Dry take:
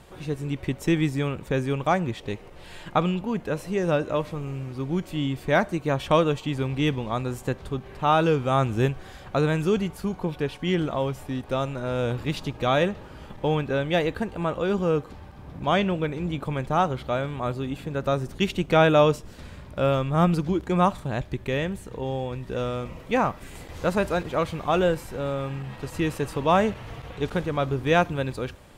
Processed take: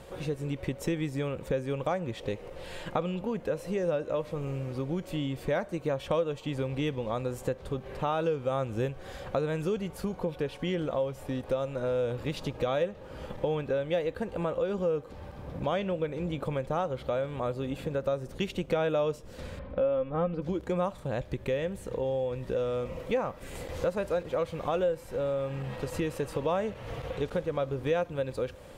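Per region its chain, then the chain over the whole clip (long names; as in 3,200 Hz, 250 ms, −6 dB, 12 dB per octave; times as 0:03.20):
0:19.59–0:20.42: high-frequency loss of the air 390 metres + comb filter 3.9 ms, depth 59%
whole clip: parametric band 520 Hz +11.5 dB 0.34 octaves; downward compressor 3 to 1, threshold −30 dBFS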